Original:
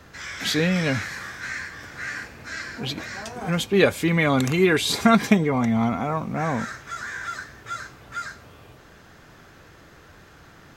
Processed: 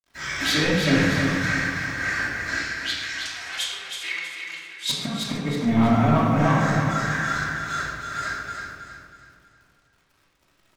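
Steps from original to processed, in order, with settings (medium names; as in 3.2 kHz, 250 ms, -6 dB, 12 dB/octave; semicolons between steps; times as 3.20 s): expander -36 dBFS; bit crusher 10-bit; flange 1.9 Hz, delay 0.7 ms, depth 6.9 ms, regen +29%; inverted gate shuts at -15 dBFS, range -26 dB; saturation -24.5 dBFS, distortion -12 dB; 2.59–4.89 s: Butterworth band-pass 5.3 kHz, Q 0.51; feedback delay 320 ms, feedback 38%, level -6 dB; reverberation RT60 1.3 s, pre-delay 3 ms, DRR -5 dB; trim +4.5 dB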